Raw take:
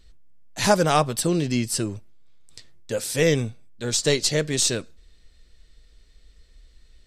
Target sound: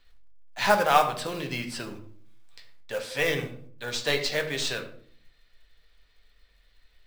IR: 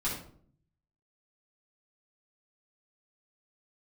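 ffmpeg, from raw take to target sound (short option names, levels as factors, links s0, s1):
-filter_complex "[0:a]acrossover=split=560 3900:gain=0.158 1 0.1[s0][s1][s2];[s0][s1][s2]amix=inputs=3:normalize=0,acrusher=bits=4:mode=log:mix=0:aa=0.000001,asplit=2[s3][s4];[1:a]atrim=start_sample=2205[s5];[s4][s5]afir=irnorm=-1:irlink=0,volume=0.422[s6];[s3][s6]amix=inputs=2:normalize=0,volume=0.841"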